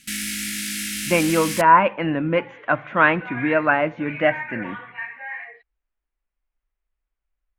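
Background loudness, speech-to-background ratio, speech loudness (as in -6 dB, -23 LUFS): -26.5 LUFS, 6.5 dB, -20.0 LUFS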